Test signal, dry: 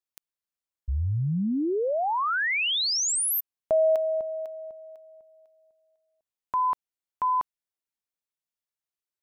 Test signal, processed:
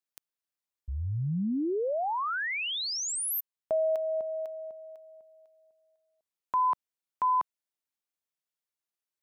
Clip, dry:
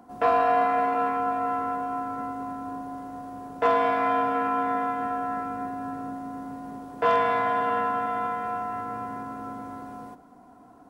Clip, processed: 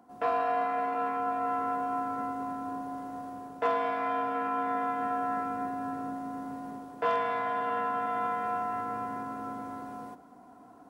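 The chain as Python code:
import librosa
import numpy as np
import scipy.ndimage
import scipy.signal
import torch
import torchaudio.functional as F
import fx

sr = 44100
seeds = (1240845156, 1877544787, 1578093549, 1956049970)

y = fx.low_shelf(x, sr, hz=85.0, db=-10.0)
y = fx.rider(y, sr, range_db=3, speed_s=0.5)
y = F.gain(torch.from_numpy(y), -4.0).numpy()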